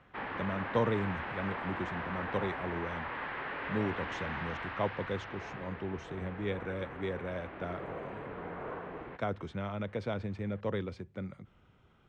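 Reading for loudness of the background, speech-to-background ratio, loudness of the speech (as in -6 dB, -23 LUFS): -40.5 LUFS, 2.5 dB, -38.0 LUFS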